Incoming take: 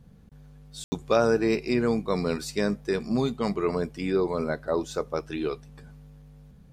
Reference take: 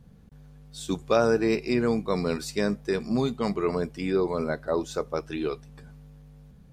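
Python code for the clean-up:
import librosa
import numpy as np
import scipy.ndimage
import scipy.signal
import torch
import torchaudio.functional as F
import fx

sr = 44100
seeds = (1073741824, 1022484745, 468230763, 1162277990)

y = fx.fix_ambience(x, sr, seeds[0], print_start_s=6.21, print_end_s=6.71, start_s=0.84, end_s=0.92)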